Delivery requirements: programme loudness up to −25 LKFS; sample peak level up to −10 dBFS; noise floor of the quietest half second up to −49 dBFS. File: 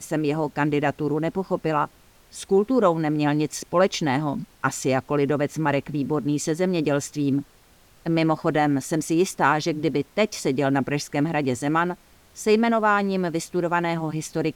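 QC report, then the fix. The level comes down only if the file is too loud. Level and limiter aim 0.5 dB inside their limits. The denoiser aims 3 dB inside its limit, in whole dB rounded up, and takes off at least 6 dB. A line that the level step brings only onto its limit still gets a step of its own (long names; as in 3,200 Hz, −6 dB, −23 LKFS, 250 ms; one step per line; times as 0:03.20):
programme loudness −23.5 LKFS: out of spec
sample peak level −6.5 dBFS: out of spec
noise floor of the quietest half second −55 dBFS: in spec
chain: level −2 dB
brickwall limiter −10.5 dBFS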